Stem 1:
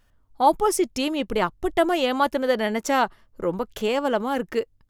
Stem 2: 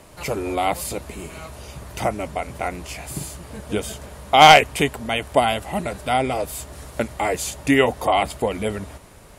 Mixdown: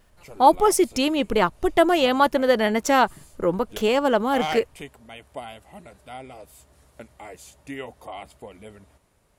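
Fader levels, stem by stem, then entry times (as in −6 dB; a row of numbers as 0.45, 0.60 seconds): +3.0, −18.5 decibels; 0.00, 0.00 seconds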